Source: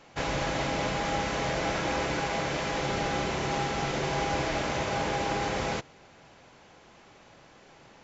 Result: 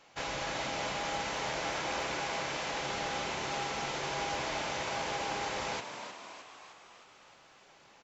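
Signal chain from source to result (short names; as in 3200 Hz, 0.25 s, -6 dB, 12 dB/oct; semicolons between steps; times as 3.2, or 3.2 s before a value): low shelf 500 Hz -11 dB; frequency-shifting echo 0.309 s, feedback 58%, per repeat +77 Hz, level -8.5 dB; hard clip -22 dBFS, distortion -39 dB; bell 1800 Hz -2 dB; gain -2.5 dB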